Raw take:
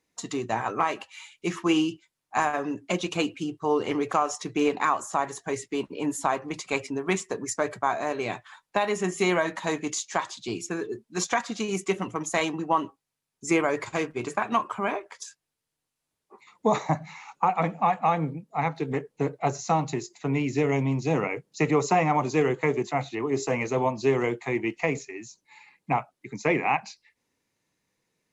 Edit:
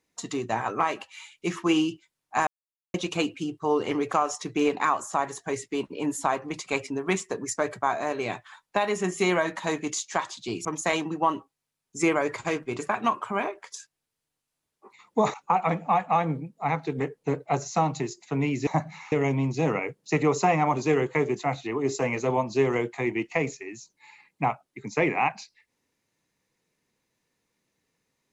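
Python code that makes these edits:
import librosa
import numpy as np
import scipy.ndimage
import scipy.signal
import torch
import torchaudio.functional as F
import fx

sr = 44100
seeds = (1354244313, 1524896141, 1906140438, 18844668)

y = fx.edit(x, sr, fx.silence(start_s=2.47, length_s=0.47),
    fx.cut(start_s=10.65, length_s=1.48),
    fx.move(start_s=16.82, length_s=0.45, to_s=20.6), tone=tone)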